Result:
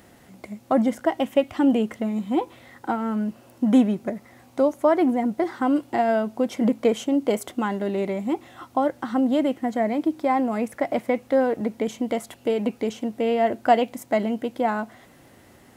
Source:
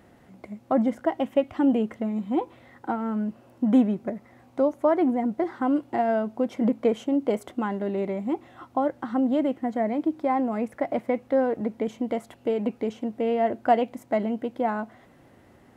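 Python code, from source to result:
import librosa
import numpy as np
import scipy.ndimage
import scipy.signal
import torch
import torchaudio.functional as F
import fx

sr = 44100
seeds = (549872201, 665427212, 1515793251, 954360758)

y = fx.high_shelf(x, sr, hz=3100.0, db=12.0)
y = y * 10.0 ** (2.0 / 20.0)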